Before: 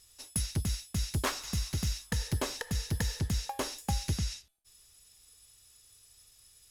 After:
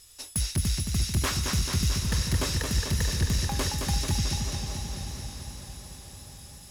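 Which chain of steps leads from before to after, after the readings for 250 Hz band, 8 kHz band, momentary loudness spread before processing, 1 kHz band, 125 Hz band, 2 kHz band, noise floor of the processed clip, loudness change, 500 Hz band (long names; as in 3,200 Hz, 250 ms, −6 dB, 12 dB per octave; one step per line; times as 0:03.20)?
+6.0 dB, +7.5 dB, 3 LU, +3.5 dB, +6.5 dB, +6.0 dB, −47 dBFS, +6.0 dB, +3.5 dB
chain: feedback delay with all-pass diffusion 931 ms, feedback 43%, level −15 dB
in parallel at −1 dB: brickwall limiter −24.5 dBFS, peak gain reduction 8 dB
on the sum: sine wavefolder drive 6 dB, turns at −12 dBFS
dynamic equaliser 700 Hz, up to −5 dB, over −37 dBFS, Q 1
feedback echo with a swinging delay time 220 ms, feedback 69%, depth 74 cents, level −4.5 dB
level −8.5 dB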